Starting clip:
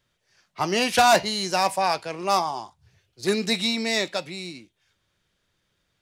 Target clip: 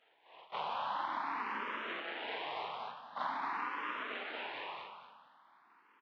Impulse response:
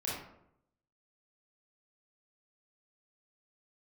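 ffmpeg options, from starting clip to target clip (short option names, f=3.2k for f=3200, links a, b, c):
-filter_complex "[0:a]afftfilt=real='re':imag='-im':win_size=4096:overlap=0.75,acrossover=split=1500[a][b];[a]asoftclip=type=hard:threshold=-27dB[c];[b]acontrast=89[d];[c][d]amix=inputs=2:normalize=0,afftfilt=real='re*lt(hypot(re,im),0.0398)':imag='im*lt(hypot(re,im),0.0398)':win_size=1024:overlap=0.75,aeval=exprs='abs(val(0))':c=same,asplit=2[e][f];[f]aecho=0:1:233|466|699|932:0.501|0.155|0.0482|0.0149[g];[e][g]amix=inputs=2:normalize=0,highpass=f=310:t=q:w=0.5412,highpass=f=310:t=q:w=1.307,lowpass=f=3.5k:t=q:w=0.5176,lowpass=f=3.5k:t=q:w=0.7071,lowpass=f=3.5k:t=q:w=1.932,afreqshift=-150,highpass=230,equalizer=f=960:w=1.4:g=14,acompressor=threshold=-42dB:ratio=16,asplit=2[h][i];[i]afreqshift=0.46[j];[h][j]amix=inputs=2:normalize=1,volume=10dB"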